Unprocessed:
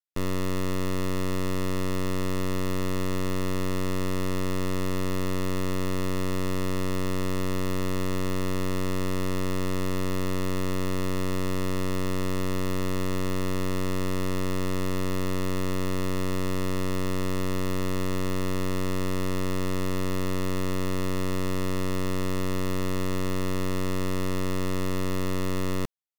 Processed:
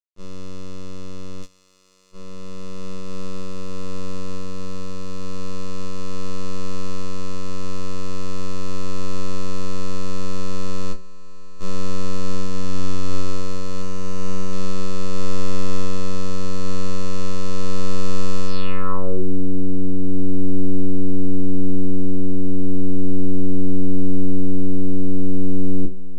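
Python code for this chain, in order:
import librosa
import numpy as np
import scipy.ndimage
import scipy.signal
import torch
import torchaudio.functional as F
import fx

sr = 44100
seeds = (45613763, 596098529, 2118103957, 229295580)

y = fx.lower_of_two(x, sr, delay_ms=8.7, at=(10.92, 11.59), fade=0.02)
y = fx.notch(y, sr, hz=1900.0, q=7.1)
y = fx.resample_bad(y, sr, factor=6, down='filtered', up='hold', at=(13.82, 14.53))
y = fx.peak_eq(y, sr, hz=6600.0, db=-6.5, octaves=0.8)
y = fx.echo_diffused(y, sr, ms=1655, feedback_pct=74, wet_db=-9.0)
y = fx.filter_sweep_lowpass(y, sr, from_hz=6500.0, to_hz=310.0, start_s=18.46, end_s=19.24, q=4.1)
y = fx.quant_float(y, sr, bits=6)
y = fx.tilt_eq(y, sr, slope=4.0, at=(1.42, 2.11), fade=0.02)
y = fx.room_shoebox(y, sr, seeds[0], volume_m3=150.0, walls='furnished', distance_m=0.83)
y = fx.upward_expand(y, sr, threshold_db=-24.0, expansion=2.5)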